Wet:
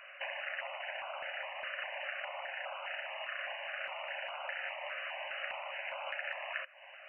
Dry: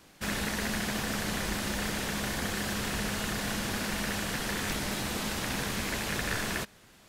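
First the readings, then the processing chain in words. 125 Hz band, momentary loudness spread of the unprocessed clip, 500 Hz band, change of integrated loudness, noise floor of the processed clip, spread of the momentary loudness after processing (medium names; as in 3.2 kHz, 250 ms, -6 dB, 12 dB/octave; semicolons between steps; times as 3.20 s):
under -40 dB, 1 LU, -6.0 dB, -8.0 dB, -53 dBFS, 2 LU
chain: compression 16:1, threshold -42 dBFS, peak gain reduction 15.5 dB; FFT band-pass 530–3000 Hz; step-sequenced notch 4.9 Hz 870–1800 Hz; trim +13 dB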